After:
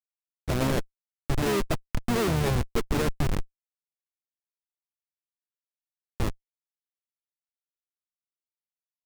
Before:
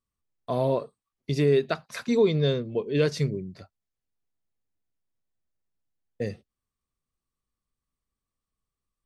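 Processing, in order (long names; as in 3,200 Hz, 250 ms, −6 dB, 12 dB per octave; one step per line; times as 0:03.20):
far-end echo of a speakerphone 240 ms, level −25 dB
comparator with hysteresis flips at −25 dBFS
pitch-shifted copies added −12 semitones −6 dB, −4 semitones −9 dB
level +4.5 dB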